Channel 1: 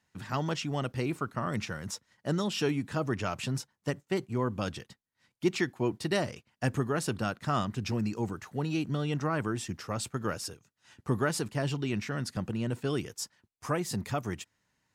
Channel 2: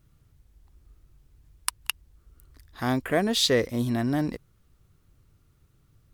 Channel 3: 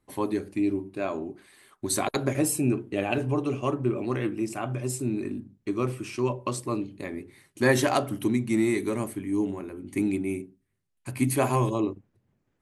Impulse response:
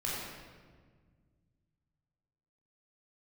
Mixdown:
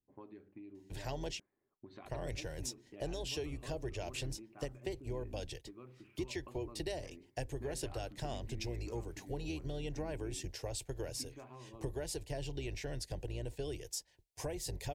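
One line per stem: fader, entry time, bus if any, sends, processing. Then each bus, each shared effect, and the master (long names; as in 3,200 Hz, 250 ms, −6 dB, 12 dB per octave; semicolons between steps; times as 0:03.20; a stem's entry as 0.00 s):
+1.5 dB, 0.75 s, muted 0:01.40–0:02.05, no send, sub-octave generator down 2 octaves, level −5 dB; phaser with its sweep stopped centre 520 Hz, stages 4; downward compressor 5 to 1, threshold −39 dBFS, peak gain reduction 14 dB
muted
−17.5 dB, 0.00 s, no send, low-pass that shuts in the quiet parts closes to 490 Hz, open at −20.5 dBFS; low-pass filter 3,700 Hz 24 dB per octave; downward compressor 6 to 1, threshold −32 dBFS, peak gain reduction 15 dB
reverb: not used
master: no processing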